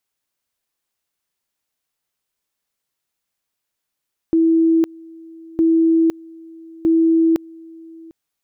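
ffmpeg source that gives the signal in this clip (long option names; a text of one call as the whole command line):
ffmpeg -f lavfi -i "aevalsrc='pow(10,(-11-25*gte(mod(t,1.26),0.51))/20)*sin(2*PI*327*t)':duration=3.78:sample_rate=44100" out.wav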